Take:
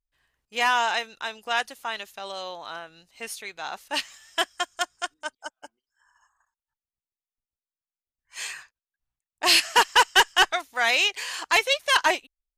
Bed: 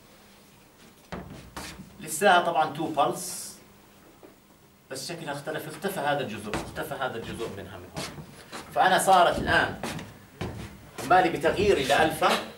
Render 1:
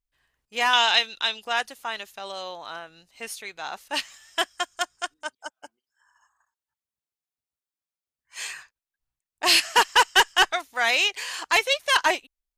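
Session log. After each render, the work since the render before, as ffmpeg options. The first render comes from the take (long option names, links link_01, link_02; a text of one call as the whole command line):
ffmpeg -i in.wav -filter_complex "[0:a]asettb=1/sr,asplit=3[link_01][link_02][link_03];[link_01]atrim=end=0.734[link_04];[link_02]atrim=start=0.73:end=1.45,asetpts=PTS-STARTPTS,afade=type=in:duration=0.004:curve=qsin,afade=type=out:start_time=0.716:duration=0.004:curve=qsin,equalizer=frequency=3500:width=1.3:gain=13.5[link_05];[link_03]atrim=start=1.446[link_06];[link_04][link_05]acrossfade=duration=0.004:curve1=hsin:curve2=qsin[link_07];[link_07][link_06]acrossfade=duration=0.004:curve1=qsin:curve2=hsin,asettb=1/sr,asplit=3[link_08][link_09][link_10];[link_08]atrim=end=5.274[link_11];[link_09]atrim=start=5.27:end=8.48,asetpts=PTS-STARTPTS,afade=type=in:duration=0.004:curve=qsin,afade=type=out:start_time=3.206:duration=0.004:curve=qsin,highpass=77[link_12];[link_10]atrim=start=8.476[link_13];[link_11][link_12]acrossfade=duration=0.004:curve1=hsin:curve2=qsin[link_14];[link_14][link_13]acrossfade=duration=0.004:curve1=qsin:curve2=hsin" out.wav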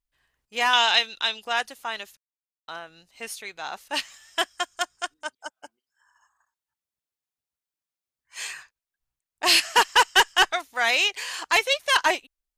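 ffmpeg -i in.wav -filter_complex "[0:a]asplit=3[link_01][link_02][link_03];[link_01]atrim=end=2.17,asetpts=PTS-STARTPTS,afade=type=out:start_time=2.166:duration=0.004:curve=hsin[link_04];[link_02]atrim=start=2.17:end=2.68,asetpts=PTS-STARTPTS,volume=0[link_05];[link_03]atrim=start=2.68,asetpts=PTS-STARTPTS,afade=type=in:duration=0.004:curve=hsin[link_06];[link_04][link_05][link_06]concat=n=3:v=0:a=1" out.wav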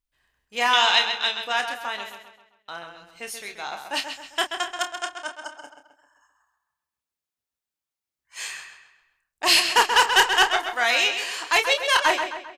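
ffmpeg -i in.wav -filter_complex "[0:a]asplit=2[link_01][link_02];[link_02]adelay=29,volume=-8dB[link_03];[link_01][link_03]amix=inputs=2:normalize=0,asplit=2[link_04][link_05];[link_05]adelay=132,lowpass=frequency=4900:poles=1,volume=-7dB,asplit=2[link_06][link_07];[link_07]adelay=132,lowpass=frequency=4900:poles=1,volume=0.46,asplit=2[link_08][link_09];[link_09]adelay=132,lowpass=frequency=4900:poles=1,volume=0.46,asplit=2[link_10][link_11];[link_11]adelay=132,lowpass=frequency=4900:poles=1,volume=0.46,asplit=2[link_12][link_13];[link_13]adelay=132,lowpass=frequency=4900:poles=1,volume=0.46[link_14];[link_04][link_06][link_08][link_10][link_12][link_14]amix=inputs=6:normalize=0" out.wav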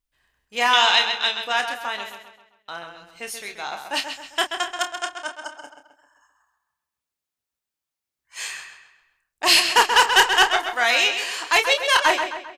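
ffmpeg -i in.wav -af "volume=2dB,alimiter=limit=-3dB:level=0:latency=1" out.wav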